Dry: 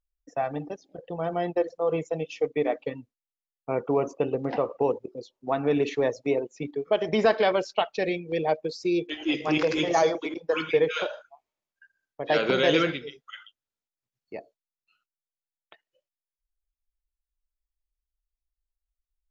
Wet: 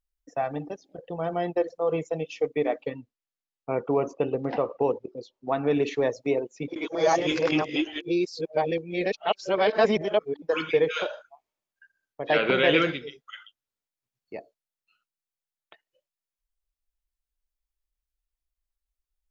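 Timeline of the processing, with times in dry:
2.87–5.73 LPF 6400 Hz
6.68–10.42 reverse
12.32–12.82 synth low-pass 2600 Hz, resonance Q 1.7

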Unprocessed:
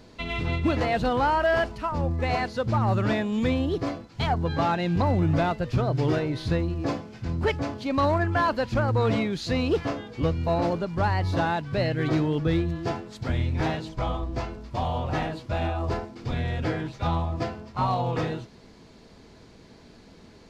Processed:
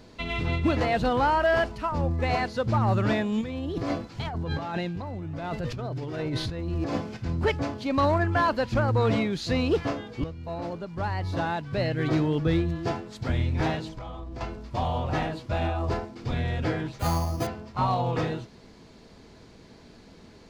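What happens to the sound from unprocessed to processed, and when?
3.41–7.17 negative-ratio compressor -31 dBFS
10.24–12.27 fade in, from -13.5 dB
13.92–14.41 compressor, threshold -34 dBFS
16.99–17.47 careless resampling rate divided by 8×, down none, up hold

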